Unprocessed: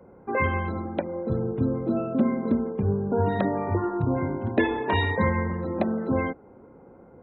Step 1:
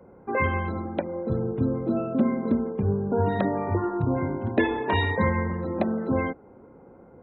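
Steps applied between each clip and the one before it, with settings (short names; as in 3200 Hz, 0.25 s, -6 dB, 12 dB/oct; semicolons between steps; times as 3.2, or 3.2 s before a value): nothing audible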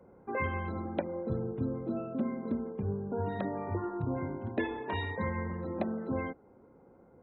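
vocal rider 0.5 s; gain -9 dB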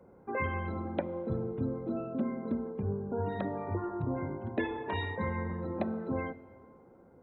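plate-style reverb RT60 2.7 s, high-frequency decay 0.65×, DRR 17 dB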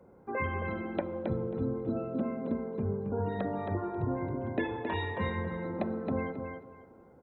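feedback echo 0.27 s, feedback 19%, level -5.5 dB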